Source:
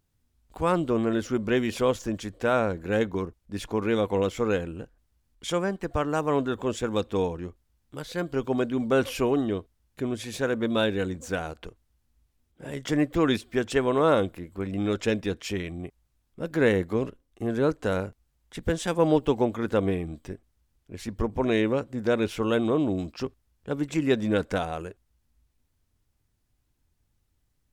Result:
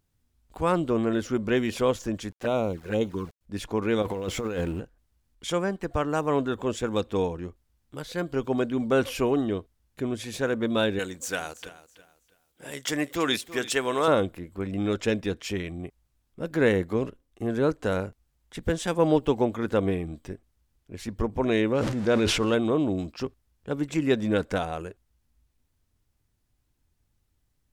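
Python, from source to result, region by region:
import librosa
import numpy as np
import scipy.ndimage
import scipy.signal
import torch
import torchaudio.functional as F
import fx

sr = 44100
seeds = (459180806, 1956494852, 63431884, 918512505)

y = fx.chain(x, sr, fx.peak_eq(hz=61.0, db=-13.5, octaves=0.26),
    fx.sample_gate(floor_db=-44.0),
    fx.env_flanger(rest_ms=9.8, full_db=-21.5), at=(2.31, 3.41))
y = fx.chain(y, sr, fx.law_mismatch(coded='mu'),
    fx.over_compress(threshold_db=-29.0, ratio=-1.0), at=(4.02, 4.8))
y = fx.chain(y, sr, fx.tilt_eq(slope=3.0),
    fx.echo_feedback(ms=328, feedback_pct=28, wet_db=-16), at=(10.99, 14.08))
y = fx.chain(y, sr, fx.zero_step(step_db=-38.0),
    fx.lowpass(hz=8100.0, slope=12),
    fx.sustainer(db_per_s=36.0), at=(21.75, 22.55))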